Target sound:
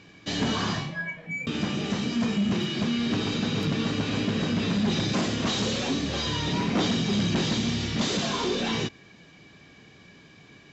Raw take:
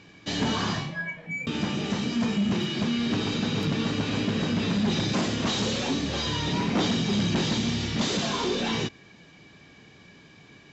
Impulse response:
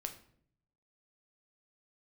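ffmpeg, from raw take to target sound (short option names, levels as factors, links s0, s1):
-af "bandreject=f=880:w=21"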